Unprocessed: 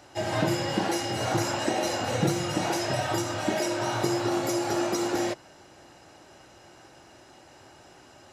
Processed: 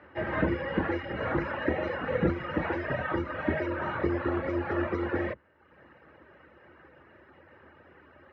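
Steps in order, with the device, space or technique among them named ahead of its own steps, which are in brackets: reverb removal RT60 0.91 s; sub-octave bass pedal (octave divider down 2 oct, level +3 dB; cabinet simulation 80–2300 Hz, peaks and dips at 110 Hz -10 dB, 500 Hz +6 dB, 740 Hz -9 dB, 1.2 kHz +4 dB, 1.8 kHz +7 dB); trim -1 dB

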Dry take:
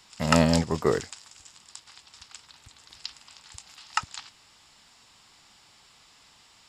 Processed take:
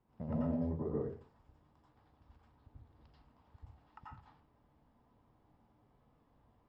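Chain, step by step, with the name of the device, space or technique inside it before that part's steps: television next door (compression 3:1, threshold -31 dBFS, peak gain reduction 12.5 dB; low-pass 530 Hz 12 dB/octave; reverberation RT60 0.35 s, pre-delay 82 ms, DRR -5.5 dB); trim -8.5 dB

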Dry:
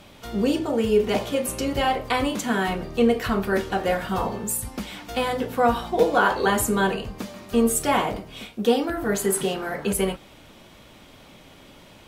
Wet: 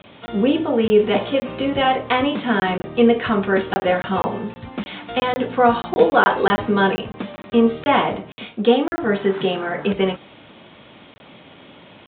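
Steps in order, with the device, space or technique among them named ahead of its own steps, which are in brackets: call with lost packets (high-pass 120 Hz 12 dB/octave; resampled via 8 kHz; lost packets of 20 ms random); trim +5 dB

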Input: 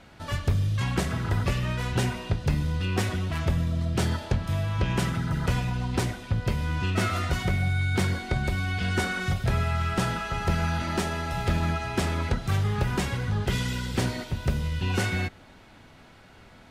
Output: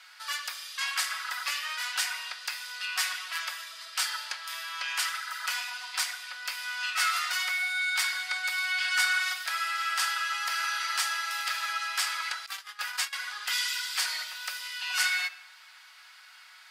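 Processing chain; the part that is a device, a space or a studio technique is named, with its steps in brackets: treble shelf 9 kHz +7.5 dB; simulated room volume 3000 m³, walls furnished, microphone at 0.99 m; 12.46–13.13 s: gate -24 dBFS, range -18 dB; headphones lying on a table (high-pass 1.2 kHz 24 dB/octave; peaking EQ 4.8 kHz +8 dB 0.22 oct); trim +3 dB

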